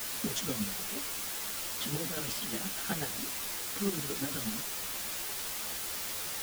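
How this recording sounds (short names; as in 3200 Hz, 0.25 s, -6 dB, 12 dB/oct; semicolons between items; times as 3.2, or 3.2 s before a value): chopped level 8.3 Hz, depth 60%, duty 25%; a quantiser's noise floor 6-bit, dither triangular; a shimmering, thickened sound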